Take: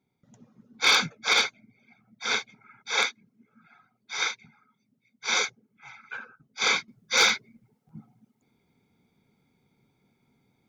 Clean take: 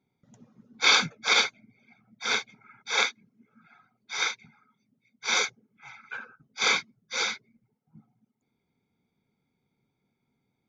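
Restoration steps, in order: clip repair -12 dBFS; interpolate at 7.29/7.89, 1.8 ms; gain correction -8.5 dB, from 6.88

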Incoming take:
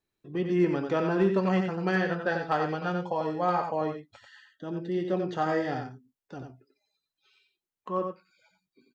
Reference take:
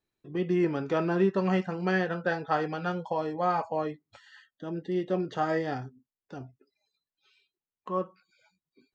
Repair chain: clip repair -15.5 dBFS; inverse comb 90 ms -6 dB

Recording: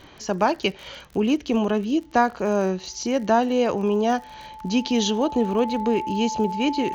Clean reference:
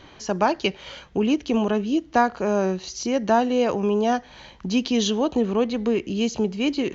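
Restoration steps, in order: de-click; notch 870 Hz, Q 30

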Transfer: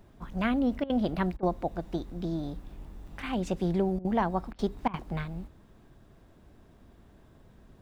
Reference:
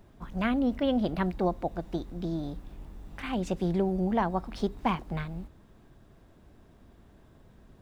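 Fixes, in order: interpolate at 3.07, 4.8 ms; interpolate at 0.84/1.37/3.99/4.53/4.88, 56 ms

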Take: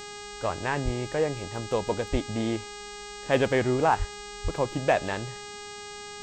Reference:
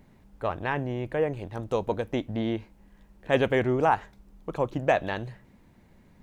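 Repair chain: clip repair -12 dBFS; de-hum 411.9 Hz, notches 20; de-plosive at 0.84/2.11/3.98/4.43

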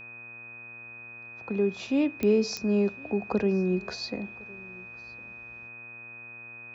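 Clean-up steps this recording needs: de-click; de-hum 117.7 Hz, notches 16; notch 2500 Hz, Q 30; inverse comb 1.059 s -24 dB

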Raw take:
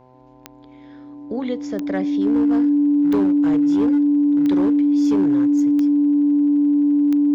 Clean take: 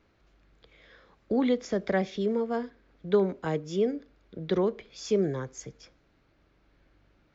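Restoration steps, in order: clip repair -13 dBFS; de-click; de-hum 127.6 Hz, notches 8; notch 290 Hz, Q 30

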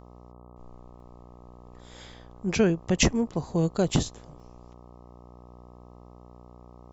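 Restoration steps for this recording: de-hum 60.5 Hz, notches 21; interpolate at 1/3.89/4.4, 1.9 ms

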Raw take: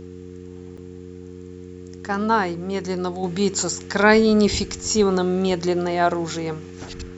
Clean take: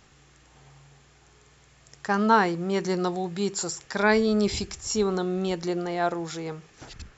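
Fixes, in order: de-hum 90.4 Hz, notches 5; interpolate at 0.77, 5.6 ms; gain correction -6.5 dB, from 3.23

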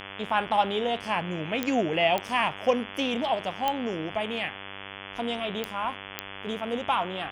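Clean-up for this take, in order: de-click; de-hum 98.2 Hz, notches 35

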